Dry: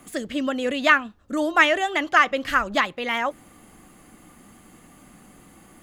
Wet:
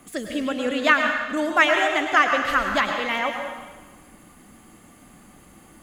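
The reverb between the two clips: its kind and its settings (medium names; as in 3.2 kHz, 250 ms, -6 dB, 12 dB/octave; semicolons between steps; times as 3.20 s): plate-style reverb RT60 1.3 s, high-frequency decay 1×, pre-delay 90 ms, DRR 3.5 dB; trim -1 dB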